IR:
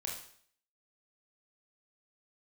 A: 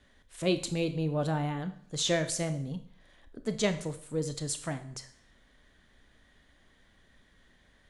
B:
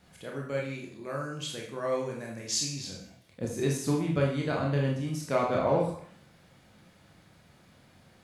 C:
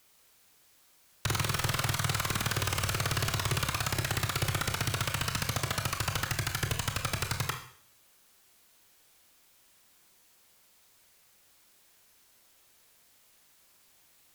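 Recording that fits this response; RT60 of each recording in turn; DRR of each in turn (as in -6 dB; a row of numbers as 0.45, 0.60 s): B; 0.55, 0.55, 0.55 s; 9.5, -2.0, 4.5 dB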